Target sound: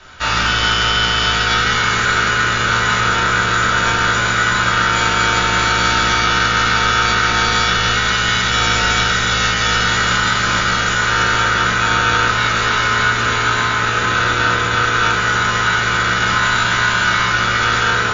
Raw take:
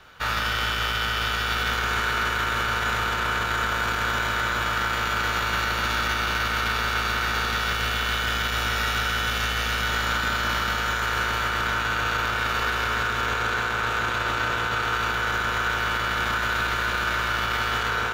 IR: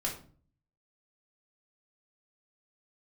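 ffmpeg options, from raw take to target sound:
-filter_complex "[0:a]aemphasis=mode=production:type=cd[a];[1:a]atrim=start_sample=2205,afade=t=out:st=0.17:d=0.01,atrim=end_sample=7938[b];[a][b]afir=irnorm=-1:irlink=0,volume=5.5dB" -ar 22050 -c:a mp2 -b:a 96k

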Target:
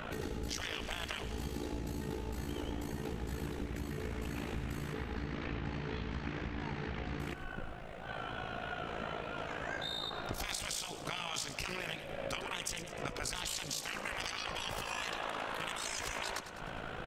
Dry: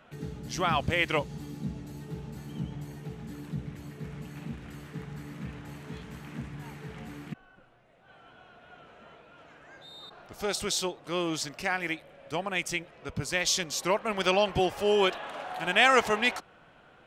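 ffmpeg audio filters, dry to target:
-filter_complex "[0:a]asettb=1/sr,asplit=3[a][b][c];[a]atrim=end=4.934[d];[b]atrim=start=4.93:end=7.2,asetpts=PTS-STARTPTS,afade=t=in:d=0.004:c=qsin,afade=t=out:st=2.266:d=0.004:c=qsin,lowpass=f=5.1k:w=0.5412,lowpass=f=5.1k:w=1.3066[e];[c]atrim=start=7.196[f];[d][e]acrossfade=d=0.004:c1=hsin:c2=qsin[g];[g][f]acrossfade=d=0.004:c1=qsin:c2=hsin,afftfilt=real='re*lt(hypot(re,im),0.0631)':imag='im*lt(hypot(re,im),0.0631)':win_size=1024:overlap=0.75,lowshelf=f=65:g=11.5,acompressor=threshold=-50dB:ratio=12,tremolo=f=55:d=0.75,aecho=1:1:102|204|306|408|510|612:0.266|0.152|0.0864|0.0493|0.0281|0.016,volume=17dB"

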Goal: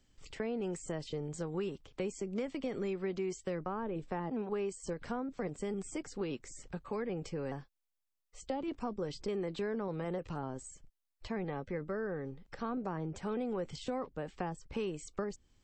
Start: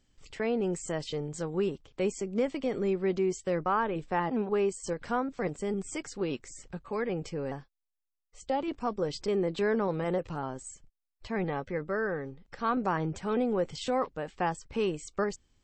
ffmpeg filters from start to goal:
-filter_complex "[0:a]acrossover=split=380|850[a][b][c];[a]acompressor=threshold=-38dB:ratio=4[d];[b]acompressor=threshold=-43dB:ratio=4[e];[c]acompressor=threshold=-48dB:ratio=4[f];[d][e][f]amix=inputs=3:normalize=0"

